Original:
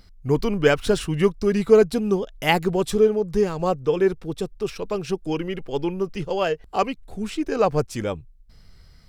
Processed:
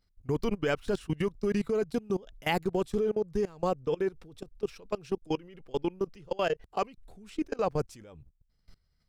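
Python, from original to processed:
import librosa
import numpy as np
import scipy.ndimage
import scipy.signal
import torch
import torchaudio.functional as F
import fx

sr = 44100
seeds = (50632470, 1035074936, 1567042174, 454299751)

y = fx.level_steps(x, sr, step_db=23)
y = y * librosa.db_to_amplitude(-3.5)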